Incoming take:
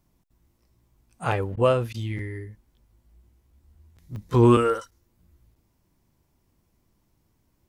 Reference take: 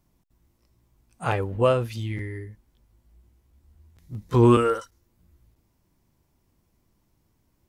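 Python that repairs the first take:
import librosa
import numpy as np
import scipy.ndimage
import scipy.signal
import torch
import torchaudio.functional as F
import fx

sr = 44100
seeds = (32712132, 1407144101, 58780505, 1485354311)

y = fx.fix_interpolate(x, sr, at_s=(0.65, 4.16), length_ms=1.5)
y = fx.fix_interpolate(y, sr, at_s=(1.56, 1.93), length_ms=11.0)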